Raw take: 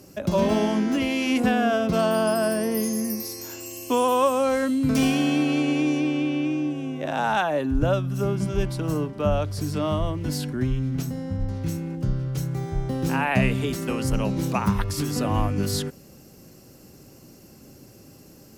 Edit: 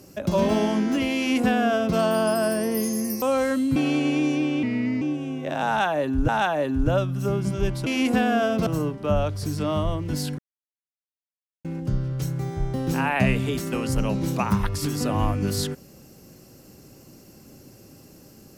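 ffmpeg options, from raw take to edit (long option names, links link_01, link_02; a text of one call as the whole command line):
ffmpeg -i in.wav -filter_complex "[0:a]asplit=10[link_01][link_02][link_03][link_04][link_05][link_06][link_07][link_08][link_09][link_10];[link_01]atrim=end=3.222[link_11];[link_02]atrim=start=4.338:end=4.882[link_12];[link_03]atrim=start=5.388:end=6.264[link_13];[link_04]atrim=start=6.26:end=6.58,asetpts=PTS-STARTPTS,asetrate=36603,aresample=44100,atrim=end_sample=17002,asetpts=PTS-STARTPTS[link_14];[link_05]atrim=start=6.576:end=7.852[link_15];[link_06]atrim=start=7.238:end=8.822[link_16];[link_07]atrim=start=1.168:end=1.972[link_17];[link_08]atrim=start=8.818:end=10.54,asetpts=PTS-STARTPTS,afade=type=out:start_time=1.718:duration=0.004:curve=hsin[link_18];[link_09]atrim=start=10.54:end=11.8,asetpts=PTS-STARTPTS,volume=0[link_19];[link_10]atrim=start=11.8,asetpts=PTS-STARTPTS,afade=type=in:duration=0.004:curve=hsin[link_20];[link_11][link_12]acrossfade=duration=0.004:curve1=hsin:curve2=hsin[link_21];[link_21][link_13]acrossfade=duration=0.004:curve1=hsin:curve2=hsin[link_22];[link_22][link_14]acrossfade=duration=0.004:curve1=hsin:curve2=hsin[link_23];[link_23][link_15]acrossfade=duration=0.004:curve1=hsin:curve2=hsin[link_24];[link_24][link_16]acrossfade=duration=0.004:curve1=hsin:curve2=hsin[link_25];[link_25][link_17]acrossfade=duration=0.004:curve1=hsin:curve2=hsin[link_26];[link_18][link_19][link_20]concat=n=3:v=0:a=1[link_27];[link_26][link_27]acrossfade=duration=0.004:curve1=hsin:curve2=hsin" out.wav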